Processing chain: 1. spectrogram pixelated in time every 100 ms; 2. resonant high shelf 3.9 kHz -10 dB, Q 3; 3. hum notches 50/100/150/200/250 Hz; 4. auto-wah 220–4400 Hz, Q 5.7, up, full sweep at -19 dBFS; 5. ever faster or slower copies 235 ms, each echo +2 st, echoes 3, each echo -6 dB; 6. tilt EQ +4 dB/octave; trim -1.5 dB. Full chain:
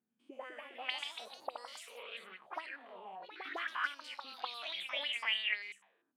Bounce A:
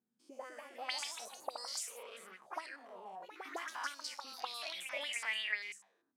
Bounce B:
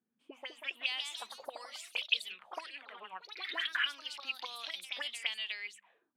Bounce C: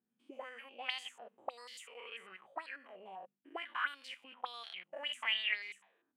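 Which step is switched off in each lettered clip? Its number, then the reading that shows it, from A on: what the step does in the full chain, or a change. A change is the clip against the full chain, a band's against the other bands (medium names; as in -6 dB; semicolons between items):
2, 8 kHz band +14.0 dB; 1, 8 kHz band +9.0 dB; 5, loudness change -1.0 LU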